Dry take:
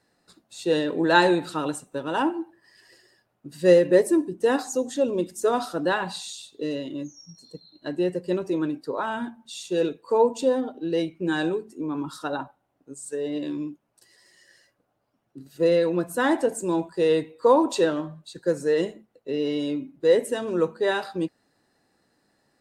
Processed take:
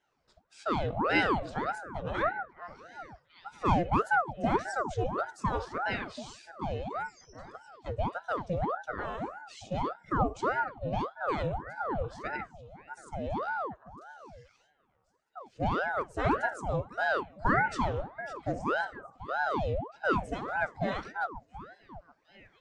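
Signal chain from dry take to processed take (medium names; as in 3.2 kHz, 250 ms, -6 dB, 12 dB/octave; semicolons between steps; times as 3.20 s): cabinet simulation 190–6100 Hz, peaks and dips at 270 Hz +7 dB, 560 Hz -7 dB, 1.5 kHz -6 dB, 4.1 kHz -10 dB; repeats whose band climbs or falls 734 ms, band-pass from 440 Hz, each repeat 1.4 oct, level -12 dB; ring modulator with a swept carrier 680 Hz, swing 75%, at 1.7 Hz; trim -4 dB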